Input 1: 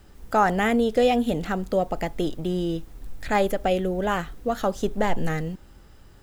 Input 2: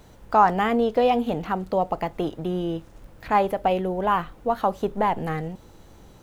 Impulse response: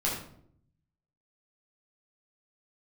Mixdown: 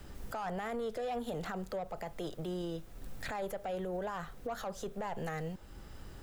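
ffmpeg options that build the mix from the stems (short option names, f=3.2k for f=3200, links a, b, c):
-filter_complex "[0:a]acrossover=split=97|270[a][b][c];[a]acompressor=threshold=-41dB:ratio=4[d];[b]acompressor=threshold=-45dB:ratio=4[e];[c]acompressor=threshold=-24dB:ratio=4[f];[d][e][f]amix=inputs=3:normalize=0,volume=1.5dB[g];[1:a]lowpass=f=3.4k:w=0.5412,lowpass=f=3.4k:w=1.3066,asoftclip=type=tanh:threshold=-22.5dB,volume=-13dB,asplit=2[h][i];[i]apad=whole_len=274424[j];[g][j]sidechaincompress=threshold=-47dB:ratio=8:attack=16:release=750[k];[k][h]amix=inputs=2:normalize=0,alimiter=level_in=6dB:limit=-24dB:level=0:latency=1:release=25,volume=-6dB"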